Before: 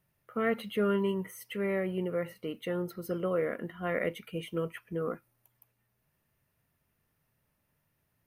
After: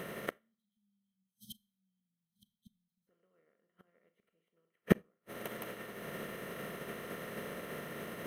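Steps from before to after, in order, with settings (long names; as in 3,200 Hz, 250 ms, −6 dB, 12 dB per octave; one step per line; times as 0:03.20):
compressor on every frequency bin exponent 0.4
gate with flip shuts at −24 dBFS, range −32 dB
time-frequency box erased 0:00.37–0:03.07, 250–3,100 Hz
four-comb reverb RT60 0.48 s, combs from 28 ms, DRR 9 dB
expander for the loud parts 2.5 to 1, over −58 dBFS
level +15 dB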